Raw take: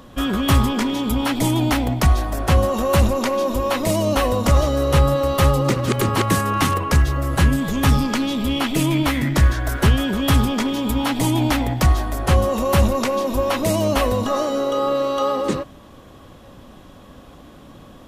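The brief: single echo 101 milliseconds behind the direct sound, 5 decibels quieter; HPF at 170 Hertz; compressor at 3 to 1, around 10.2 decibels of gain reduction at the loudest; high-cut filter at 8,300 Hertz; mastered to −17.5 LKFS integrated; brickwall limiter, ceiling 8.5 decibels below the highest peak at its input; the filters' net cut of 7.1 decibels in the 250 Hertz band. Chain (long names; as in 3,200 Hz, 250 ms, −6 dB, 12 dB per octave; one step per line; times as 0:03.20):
high-pass filter 170 Hz
low-pass filter 8,300 Hz
parametric band 250 Hz −7.5 dB
downward compressor 3 to 1, threshold −31 dBFS
brickwall limiter −23.5 dBFS
single-tap delay 101 ms −5 dB
level +13.5 dB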